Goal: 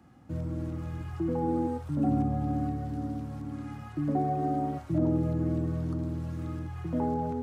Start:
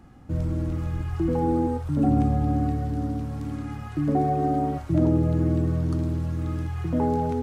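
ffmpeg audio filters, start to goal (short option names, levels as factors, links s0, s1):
-filter_complex "[0:a]highpass=93,bandreject=f=430:w=14,acrossover=split=370|1500[s0][s1][s2];[s2]alimiter=level_in=9.44:limit=0.0631:level=0:latency=1:release=292,volume=0.106[s3];[s0][s1][s3]amix=inputs=3:normalize=0,volume=0.562"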